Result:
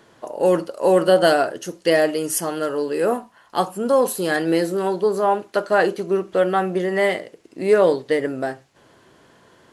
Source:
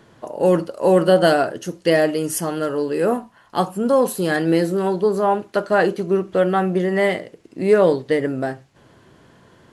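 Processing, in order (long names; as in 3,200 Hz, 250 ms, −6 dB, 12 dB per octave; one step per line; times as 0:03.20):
bass and treble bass −8 dB, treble +2 dB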